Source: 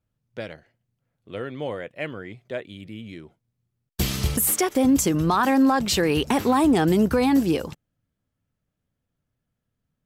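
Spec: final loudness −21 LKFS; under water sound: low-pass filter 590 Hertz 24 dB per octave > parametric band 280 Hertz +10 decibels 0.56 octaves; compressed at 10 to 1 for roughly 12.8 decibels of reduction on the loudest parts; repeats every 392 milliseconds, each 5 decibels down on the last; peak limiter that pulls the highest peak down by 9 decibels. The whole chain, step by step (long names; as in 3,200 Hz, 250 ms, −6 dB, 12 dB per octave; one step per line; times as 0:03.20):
downward compressor 10 to 1, threshold −28 dBFS
brickwall limiter −24.5 dBFS
low-pass filter 590 Hz 24 dB per octave
parametric band 280 Hz +10 dB 0.56 octaves
repeating echo 392 ms, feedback 56%, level −5 dB
level +7 dB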